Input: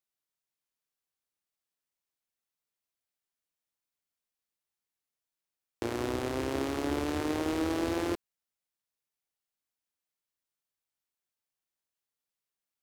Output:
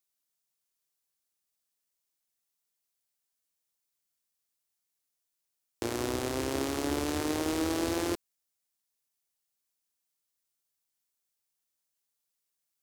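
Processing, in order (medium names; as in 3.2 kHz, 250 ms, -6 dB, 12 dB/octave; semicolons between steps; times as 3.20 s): tone controls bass 0 dB, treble +8 dB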